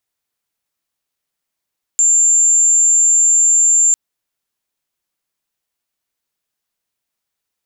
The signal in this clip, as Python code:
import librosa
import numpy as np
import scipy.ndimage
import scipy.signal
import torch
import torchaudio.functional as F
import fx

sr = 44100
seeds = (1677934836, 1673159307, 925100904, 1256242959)

y = 10.0 ** (-8.5 / 20.0) * np.sin(2.0 * np.pi * (7280.0 * (np.arange(round(1.95 * sr)) / sr)))